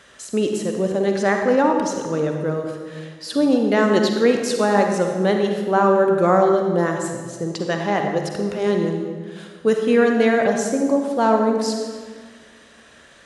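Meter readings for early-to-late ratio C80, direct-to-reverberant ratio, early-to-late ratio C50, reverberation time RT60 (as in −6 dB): 5.0 dB, 3.0 dB, 3.5 dB, 1.6 s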